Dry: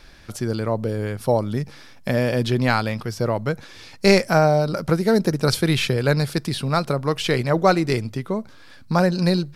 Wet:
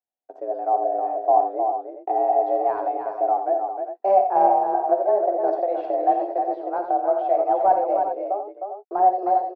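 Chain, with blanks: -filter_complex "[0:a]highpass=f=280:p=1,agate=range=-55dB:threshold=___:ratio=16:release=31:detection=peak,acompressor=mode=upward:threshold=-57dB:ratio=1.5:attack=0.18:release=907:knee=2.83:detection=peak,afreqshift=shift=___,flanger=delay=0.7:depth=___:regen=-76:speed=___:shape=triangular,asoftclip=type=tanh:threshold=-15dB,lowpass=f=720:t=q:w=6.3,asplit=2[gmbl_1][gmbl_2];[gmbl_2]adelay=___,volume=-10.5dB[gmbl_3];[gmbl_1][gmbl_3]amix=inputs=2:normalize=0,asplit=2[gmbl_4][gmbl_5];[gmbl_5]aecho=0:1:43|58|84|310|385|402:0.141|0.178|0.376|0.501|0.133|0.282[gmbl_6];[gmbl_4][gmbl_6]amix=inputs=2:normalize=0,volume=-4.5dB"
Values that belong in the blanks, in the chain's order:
-44dB, 190, 3.6, 0.37, 12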